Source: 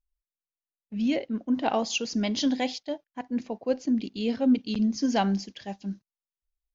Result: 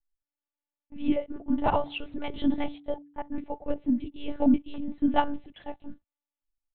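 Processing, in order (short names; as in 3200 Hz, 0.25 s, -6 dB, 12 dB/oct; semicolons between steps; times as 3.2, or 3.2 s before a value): LPF 1800 Hz 6 dB/oct; bell 820 Hz +8 dB 0.34 oct; comb 7.1 ms, depth 60%; monotone LPC vocoder at 8 kHz 290 Hz; 1.31–3.44 de-hum 144.5 Hz, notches 2; gain -1.5 dB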